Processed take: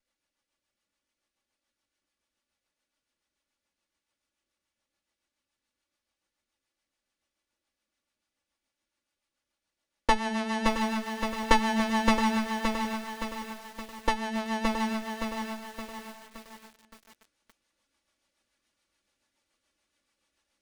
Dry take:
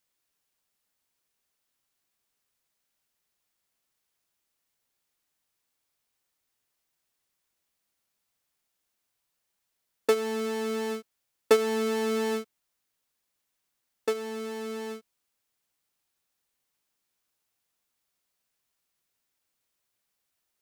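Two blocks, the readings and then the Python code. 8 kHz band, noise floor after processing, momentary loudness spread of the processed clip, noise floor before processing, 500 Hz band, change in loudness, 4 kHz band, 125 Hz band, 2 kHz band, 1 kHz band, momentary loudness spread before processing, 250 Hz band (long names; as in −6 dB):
+1.5 dB, below −85 dBFS, 17 LU, −81 dBFS, −7.0 dB, 0.0 dB, +5.0 dB, can't be measured, +7.0 dB, +10.0 dB, 13 LU, +6.5 dB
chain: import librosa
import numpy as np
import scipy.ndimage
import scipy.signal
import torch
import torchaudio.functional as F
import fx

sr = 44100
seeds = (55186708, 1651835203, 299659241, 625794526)

y = fx.lower_of_two(x, sr, delay_ms=3.5)
y = scipy.signal.sosfilt(scipy.signal.butter(4, 10000.0, 'lowpass', fs=sr, output='sos'), y)
y = fx.high_shelf(y, sr, hz=5100.0, db=-8.0)
y = fx.notch(y, sr, hz=7500.0, q=16.0)
y = fx.rider(y, sr, range_db=10, speed_s=2.0)
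y = fx.rotary(y, sr, hz=7.0)
y = fx.echo_feedback(y, sr, ms=669, feedback_pct=25, wet_db=-12.0)
y = fx.echo_crushed(y, sr, ms=569, feedback_pct=55, bits=9, wet_db=-4)
y = F.gain(torch.from_numpy(y), 7.0).numpy()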